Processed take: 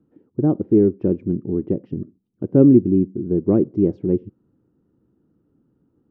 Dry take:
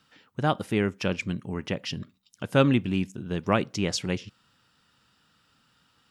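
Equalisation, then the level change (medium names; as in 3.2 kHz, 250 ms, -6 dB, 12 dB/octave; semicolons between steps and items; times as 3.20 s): resonant low-pass 350 Hz, resonance Q 4.2; +4.5 dB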